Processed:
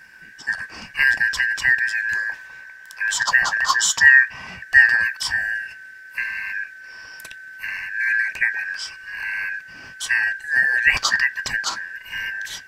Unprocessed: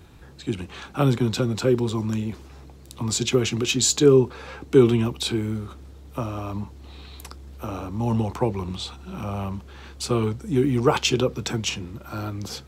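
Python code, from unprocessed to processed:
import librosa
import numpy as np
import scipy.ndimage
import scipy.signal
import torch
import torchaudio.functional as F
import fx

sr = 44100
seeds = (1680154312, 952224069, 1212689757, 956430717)

y = fx.band_shuffle(x, sr, order='2143')
y = fx.graphic_eq_15(y, sr, hz=(250, 1000, 10000), db=(-5, 8, -3), at=(2.29, 4.47))
y = y * 10.0 ** (2.0 / 20.0)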